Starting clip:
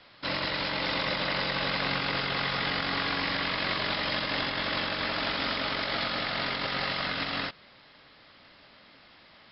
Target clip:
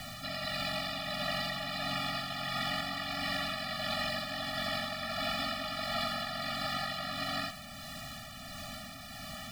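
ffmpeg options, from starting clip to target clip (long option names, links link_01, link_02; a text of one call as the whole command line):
ffmpeg -i in.wav -filter_complex "[0:a]aeval=exprs='val(0)+0.5*0.0224*sgn(val(0))':channel_layout=same,acrossover=split=260|1900[link_01][link_02][link_03];[link_01]acompressor=threshold=-48dB:ratio=5[link_04];[link_04][link_02][link_03]amix=inputs=3:normalize=0,tremolo=f=1.5:d=0.36,lowshelf=frequency=250:gain=7.5,afftfilt=real='re*eq(mod(floor(b*sr/1024/280),2),0)':imag='im*eq(mod(floor(b*sr/1024/280),2),0)':win_size=1024:overlap=0.75,volume=-2.5dB" out.wav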